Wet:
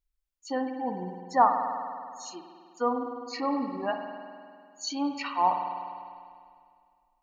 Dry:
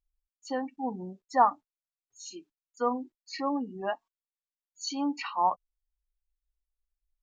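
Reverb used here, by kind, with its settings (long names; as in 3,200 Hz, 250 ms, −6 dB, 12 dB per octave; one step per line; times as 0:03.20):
spring reverb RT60 2.2 s, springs 50 ms, chirp 50 ms, DRR 5 dB
level +1 dB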